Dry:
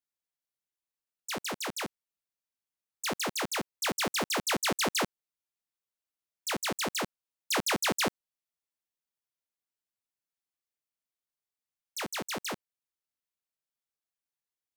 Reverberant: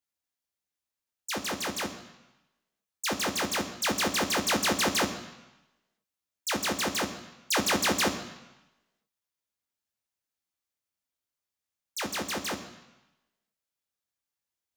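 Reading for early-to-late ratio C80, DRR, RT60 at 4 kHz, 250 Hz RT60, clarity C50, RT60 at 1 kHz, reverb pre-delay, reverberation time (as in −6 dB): 12.5 dB, 6.0 dB, 1.0 s, 0.95 s, 11.0 dB, 1.1 s, 3 ms, 1.0 s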